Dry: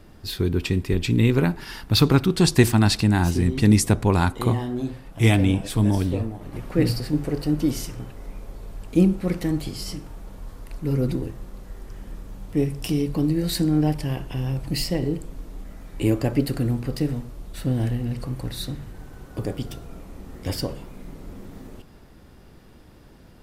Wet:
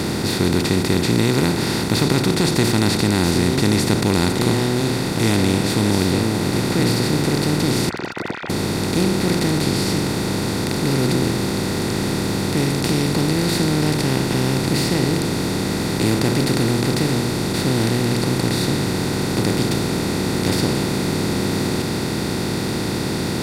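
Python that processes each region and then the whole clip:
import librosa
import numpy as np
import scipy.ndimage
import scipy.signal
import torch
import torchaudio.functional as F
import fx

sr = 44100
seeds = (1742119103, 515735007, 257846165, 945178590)

y = fx.chain(x, sr, fx.sine_speech(),
    fx.bandpass_q(hz=1500.0, q=5.8),
    fx.over_compress(threshold_db=-50.0, ratio=-1.0), at=(7.89, 8.5))
y = fx.bin_compress(y, sr, power=0.2)
y = scipy.signal.sosfilt(scipy.signal.butter(2, 58.0, 'highpass', fs=sr, output='sos'), y)
y = y * librosa.db_to_amplitude(-7.0)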